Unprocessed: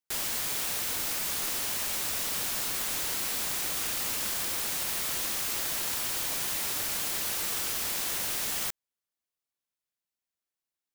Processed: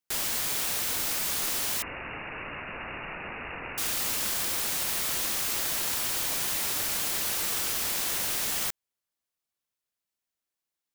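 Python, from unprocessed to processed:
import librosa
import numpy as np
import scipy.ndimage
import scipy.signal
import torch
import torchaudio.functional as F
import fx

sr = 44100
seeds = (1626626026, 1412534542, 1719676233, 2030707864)

y = fx.freq_invert(x, sr, carrier_hz=2800, at=(1.82, 3.78))
y = y * librosa.db_to_amplitude(2.0)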